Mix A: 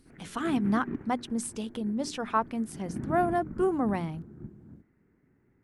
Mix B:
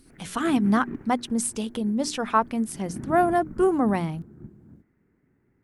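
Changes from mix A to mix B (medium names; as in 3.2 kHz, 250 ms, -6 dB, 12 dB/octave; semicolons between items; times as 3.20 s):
speech +5.5 dB; master: add treble shelf 7.9 kHz +6 dB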